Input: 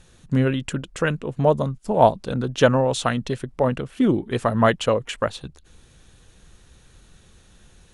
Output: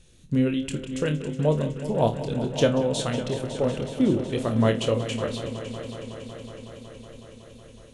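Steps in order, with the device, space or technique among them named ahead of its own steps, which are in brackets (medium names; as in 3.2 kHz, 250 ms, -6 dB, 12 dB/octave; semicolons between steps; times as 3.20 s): high-order bell 1.1 kHz -8.5 dB; flutter echo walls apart 4.6 m, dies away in 0.21 s; multi-head tape echo (multi-head delay 185 ms, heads all three, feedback 72%, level -16 dB; wow and flutter 24 cents); trim -3.5 dB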